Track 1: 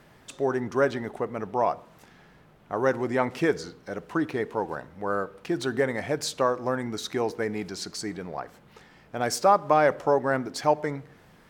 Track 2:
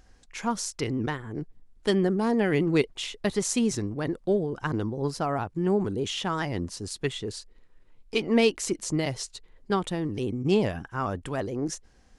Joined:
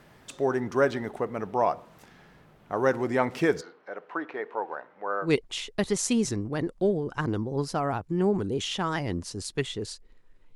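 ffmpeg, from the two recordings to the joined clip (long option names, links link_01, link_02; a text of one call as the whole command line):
ffmpeg -i cue0.wav -i cue1.wav -filter_complex "[0:a]asplit=3[link_01][link_02][link_03];[link_01]afade=type=out:start_time=3.6:duration=0.02[link_04];[link_02]highpass=530,lowpass=2100,afade=type=in:start_time=3.6:duration=0.02,afade=type=out:start_time=5.33:duration=0.02[link_05];[link_03]afade=type=in:start_time=5.33:duration=0.02[link_06];[link_04][link_05][link_06]amix=inputs=3:normalize=0,apad=whole_dur=10.55,atrim=end=10.55,atrim=end=5.33,asetpts=PTS-STARTPTS[link_07];[1:a]atrim=start=2.67:end=8.01,asetpts=PTS-STARTPTS[link_08];[link_07][link_08]acrossfade=duration=0.12:curve1=tri:curve2=tri" out.wav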